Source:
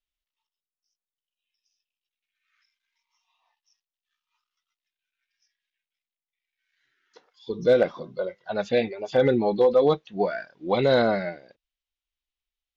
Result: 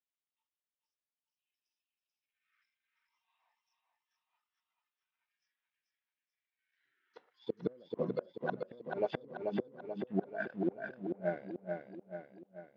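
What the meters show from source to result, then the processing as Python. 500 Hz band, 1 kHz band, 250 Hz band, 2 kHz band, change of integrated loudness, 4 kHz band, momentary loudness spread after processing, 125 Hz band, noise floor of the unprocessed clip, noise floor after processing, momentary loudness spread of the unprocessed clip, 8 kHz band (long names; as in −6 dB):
−16.0 dB, −14.5 dB, −10.5 dB, −12.0 dB, −16.0 dB, −22.0 dB, 11 LU, −12.0 dB, below −85 dBFS, below −85 dBFS, 13 LU, can't be measured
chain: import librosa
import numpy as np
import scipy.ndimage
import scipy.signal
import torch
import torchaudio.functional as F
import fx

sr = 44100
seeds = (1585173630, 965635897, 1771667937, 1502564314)

y = fx.env_lowpass_down(x, sr, base_hz=390.0, full_db=-21.0)
y = fx.rider(y, sr, range_db=4, speed_s=0.5)
y = fx.leveller(y, sr, passes=1)
y = fx.gate_flip(y, sr, shuts_db=-18.0, range_db=-32)
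y = fx.bandpass_edges(y, sr, low_hz=140.0, high_hz=2900.0)
y = fx.echo_feedback(y, sr, ms=436, feedback_pct=52, wet_db=-4.5)
y = F.gain(torch.from_numpy(y), -2.5).numpy()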